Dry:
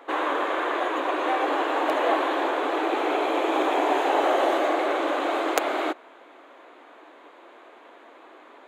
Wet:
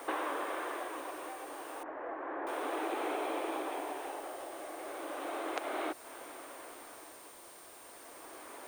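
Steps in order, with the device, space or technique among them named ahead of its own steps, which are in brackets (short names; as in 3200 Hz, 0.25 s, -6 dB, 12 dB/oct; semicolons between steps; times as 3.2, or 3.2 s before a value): medium wave at night (BPF 130–4300 Hz; compressor 6:1, threshold -35 dBFS, peak gain reduction 16.5 dB; tremolo 0.33 Hz, depth 66%; whine 9000 Hz -59 dBFS; white noise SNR 17 dB); 1.83–2.47 Chebyshev low-pass 1800 Hz, order 3; gain +1.5 dB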